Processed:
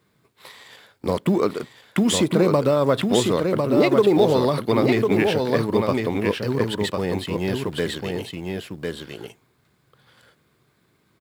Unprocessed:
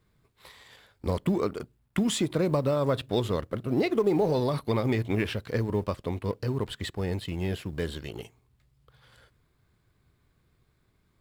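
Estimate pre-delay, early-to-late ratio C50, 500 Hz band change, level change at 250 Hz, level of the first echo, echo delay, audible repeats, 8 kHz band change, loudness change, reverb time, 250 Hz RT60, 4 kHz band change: no reverb, no reverb, +9.0 dB, +8.0 dB, -4.0 dB, 1051 ms, 1, +9.0 dB, +7.5 dB, no reverb, no reverb, +9.0 dB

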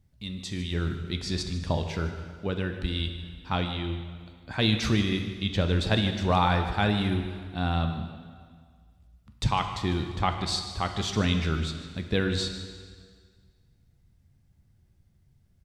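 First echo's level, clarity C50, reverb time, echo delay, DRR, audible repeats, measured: -15.0 dB, 7.0 dB, 1.8 s, 151 ms, 5.5 dB, 1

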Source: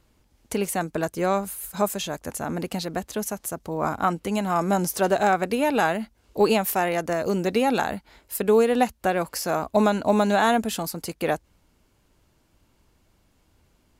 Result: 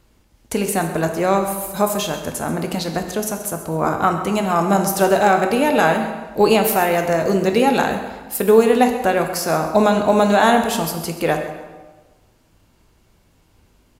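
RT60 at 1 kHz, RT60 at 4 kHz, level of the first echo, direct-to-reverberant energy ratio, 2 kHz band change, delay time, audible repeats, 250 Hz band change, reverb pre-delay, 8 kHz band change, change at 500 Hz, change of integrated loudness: 1.3 s, 1.0 s, -14.5 dB, 4.5 dB, +6.5 dB, 133 ms, 2, +6.0 dB, 12 ms, +6.0 dB, +6.5 dB, +6.0 dB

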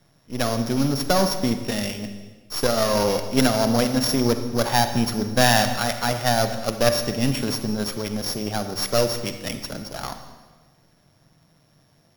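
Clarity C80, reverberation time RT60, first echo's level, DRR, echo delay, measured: 10.5 dB, 1.4 s, no echo, 7.5 dB, no echo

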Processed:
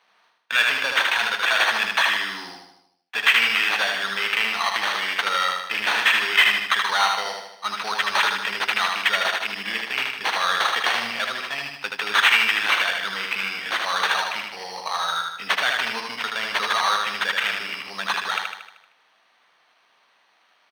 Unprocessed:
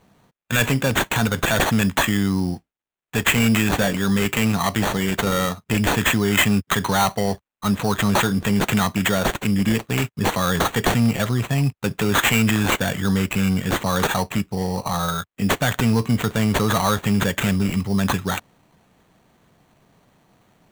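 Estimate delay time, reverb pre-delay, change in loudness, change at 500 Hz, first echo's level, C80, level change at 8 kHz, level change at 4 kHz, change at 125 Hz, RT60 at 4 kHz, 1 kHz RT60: 77 ms, no reverb, -0.5 dB, -9.5 dB, -3.5 dB, no reverb, -7.5 dB, +4.5 dB, under -30 dB, no reverb, no reverb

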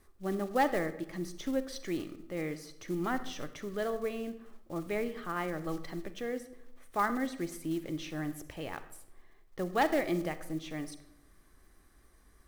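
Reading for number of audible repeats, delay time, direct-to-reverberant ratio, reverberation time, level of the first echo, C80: no echo, no echo, 11.5 dB, 0.80 s, no echo, 15.0 dB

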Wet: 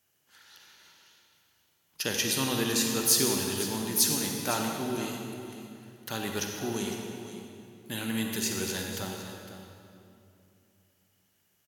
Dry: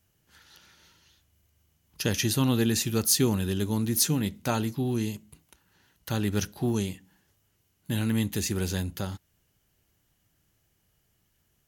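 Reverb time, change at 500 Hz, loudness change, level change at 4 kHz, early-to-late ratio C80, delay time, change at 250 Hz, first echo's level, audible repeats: 2.7 s, -1.5 dB, -1.5 dB, +2.0 dB, 2.5 dB, 506 ms, -4.5 dB, -13.0 dB, 1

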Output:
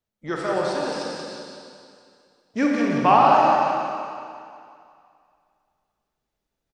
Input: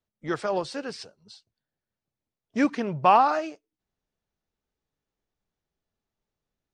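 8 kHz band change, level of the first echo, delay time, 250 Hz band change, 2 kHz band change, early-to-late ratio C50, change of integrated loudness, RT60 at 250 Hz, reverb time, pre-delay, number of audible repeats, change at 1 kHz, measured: no reading, -5.5 dB, 180 ms, +5.0 dB, +5.0 dB, -2.5 dB, +4.0 dB, 2.2 s, 2.4 s, 29 ms, 1, +5.5 dB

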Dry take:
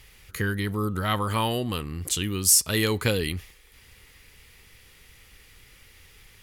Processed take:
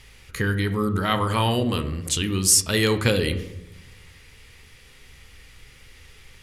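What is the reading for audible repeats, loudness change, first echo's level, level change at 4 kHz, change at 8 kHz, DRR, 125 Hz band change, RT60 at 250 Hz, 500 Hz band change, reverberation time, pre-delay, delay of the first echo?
no echo, +2.5 dB, no echo, +3.0 dB, +1.5 dB, 8.5 dB, +4.0 dB, 1.2 s, +4.5 dB, 0.85 s, 4 ms, no echo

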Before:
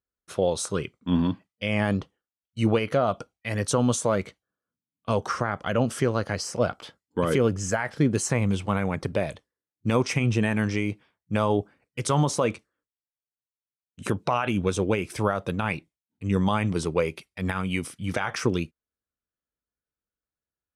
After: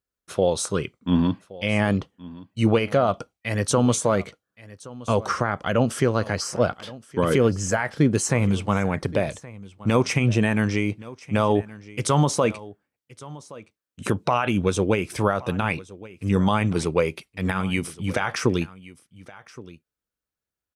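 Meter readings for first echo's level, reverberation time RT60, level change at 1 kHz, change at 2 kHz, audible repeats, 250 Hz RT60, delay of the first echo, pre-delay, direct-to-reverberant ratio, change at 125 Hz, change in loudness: -19.5 dB, no reverb, +3.0 dB, +3.0 dB, 1, no reverb, 1121 ms, no reverb, no reverb, +3.0 dB, +3.0 dB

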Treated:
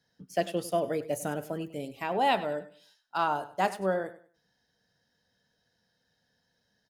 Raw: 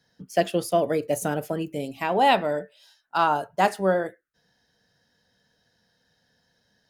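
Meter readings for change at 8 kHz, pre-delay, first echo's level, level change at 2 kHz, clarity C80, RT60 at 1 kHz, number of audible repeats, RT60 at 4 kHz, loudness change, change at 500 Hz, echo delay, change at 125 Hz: -6.5 dB, no reverb, -16.0 dB, -6.5 dB, no reverb, no reverb, 2, no reverb, -6.5 dB, -6.5 dB, 98 ms, -6.5 dB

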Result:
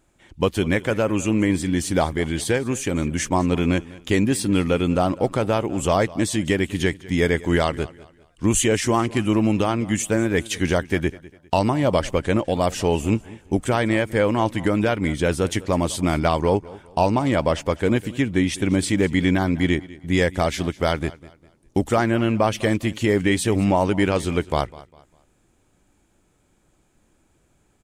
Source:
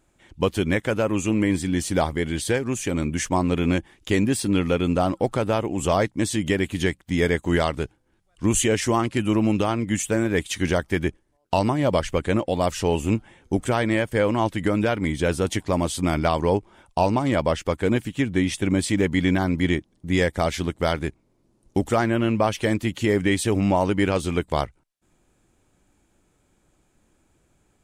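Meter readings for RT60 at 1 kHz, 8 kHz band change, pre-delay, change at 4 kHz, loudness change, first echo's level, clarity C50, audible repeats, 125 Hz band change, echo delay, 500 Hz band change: no reverb, +1.5 dB, no reverb, +1.5 dB, +1.5 dB, -20.0 dB, no reverb, 2, +1.5 dB, 201 ms, +1.5 dB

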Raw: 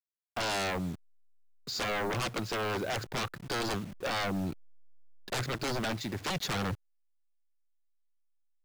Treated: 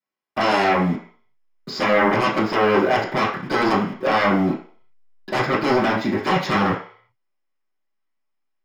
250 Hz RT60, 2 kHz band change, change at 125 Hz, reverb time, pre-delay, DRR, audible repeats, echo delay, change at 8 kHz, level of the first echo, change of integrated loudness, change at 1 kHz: 0.35 s, +13.5 dB, +9.0 dB, 0.45 s, 3 ms, -10.5 dB, no echo, no echo, -2.5 dB, no echo, +13.5 dB, +16.0 dB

